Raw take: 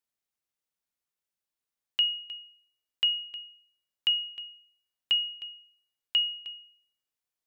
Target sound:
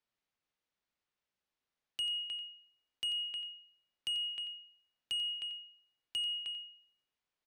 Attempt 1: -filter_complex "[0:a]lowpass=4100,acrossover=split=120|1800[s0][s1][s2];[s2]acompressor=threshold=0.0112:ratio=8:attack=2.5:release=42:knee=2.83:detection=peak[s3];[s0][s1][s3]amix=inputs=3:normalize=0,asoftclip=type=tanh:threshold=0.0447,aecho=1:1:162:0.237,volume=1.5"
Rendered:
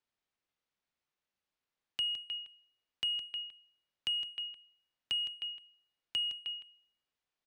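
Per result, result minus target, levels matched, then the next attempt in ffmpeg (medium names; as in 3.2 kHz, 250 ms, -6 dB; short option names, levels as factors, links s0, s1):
echo 72 ms late; saturation: distortion -8 dB
-filter_complex "[0:a]lowpass=4100,acrossover=split=120|1800[s0][s1][s2];[s2]acompressor=threshold=0.0112:ratio=8:attack=2.5:release=42:knee=2.83:detection=peak[s3];[s0][s1][s3]amix=inputs=3:normalize=0,asoftclip=type=tanh:threshold=0.0447,aecho=1:1:90:0.237,volume=1.5"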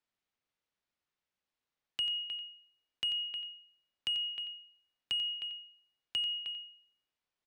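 saturation: distortion -8 dB
-filter_complex "[0:a]lowpass=4100,acrossover=split=120|1800[s0][s1][s2];[s2]acompressor=threshold=0.0112:ratio=8:attack=2.5:release=42:knee=2.83:detection=peak[s3];[s0][s1][s3]amix=inputs=3:normalize=0,asoftclip=type=tanh:threshold=0.0188,aecho=1:1:90:0.237,volume=1.5"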